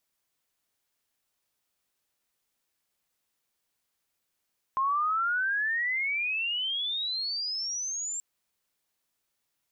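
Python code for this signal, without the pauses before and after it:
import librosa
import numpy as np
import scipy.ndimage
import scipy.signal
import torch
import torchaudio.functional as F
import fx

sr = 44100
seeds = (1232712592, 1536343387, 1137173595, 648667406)

y = fx.riser_tone(sr, length_s=3.43, level_db=-23.5, wave='sine', hz=1050.0, rise_st=34.0, swell_db=-7.5)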